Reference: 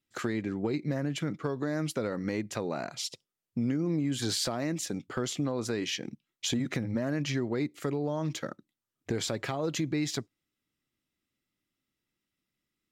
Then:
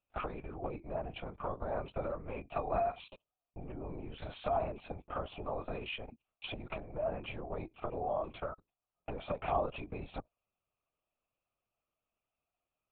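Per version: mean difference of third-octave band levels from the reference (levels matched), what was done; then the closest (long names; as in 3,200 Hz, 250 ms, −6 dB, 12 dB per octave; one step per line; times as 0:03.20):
9.5 dB: high-shelf EQ 2,700 Hz −9.5 dB
downward compressor, threshold −32 dBFS, peak gain reduction 7 dB
formant filter a
linear-prediction vocoder at 8 kHz whisper
level +14 dB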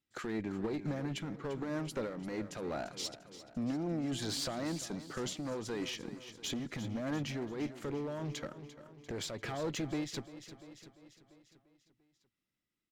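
5.5 dB: high-shelf EQ 7,600 Hz −6 dB
asymmetric clip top −31 dBFS
repeating echo 345 ms, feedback 57%, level −13.5 dB
amplitude modulation by smooth noise, depth 60%
level −1.5 dB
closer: second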